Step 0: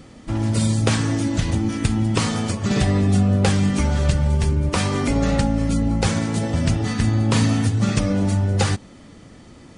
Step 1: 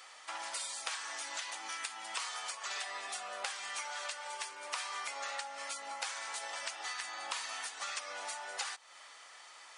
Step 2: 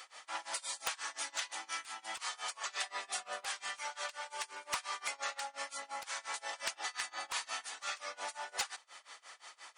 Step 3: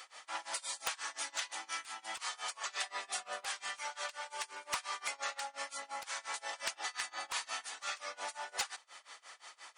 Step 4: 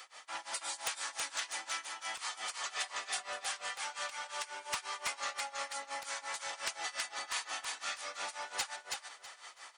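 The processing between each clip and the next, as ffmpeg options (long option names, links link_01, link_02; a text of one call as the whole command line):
ffmpeg -i in.wav -af "highpass=frequency=860:width=0.5412,highpass=frequency=860:width=1.3066,acompressor=threshold=-39dB:ratio=4" out.wav
ffmpeg -i in.wav -af "aeval=exprs='0.0398*(abs(mod(val(0)/0.0398+3,4)-2)-1)':channel_layout=same,tremolo=f=5.7:d=0.95,volume=4dB" out.wav
ffmpeg -i in.wav -af anull out.wav
ffmpeg -i in.wav -filter_complex "[0:a]acrossover=split=420|1600[link_01][link_02][link_03];[link_02]asoftclip=type=tanh:threshold=-38dB[link_04];[link_01][link_04][link_03]amix=inputs=3:normalize=0,aecho=1:1:325|650|975:0.668|0.134|0.0267" out.wav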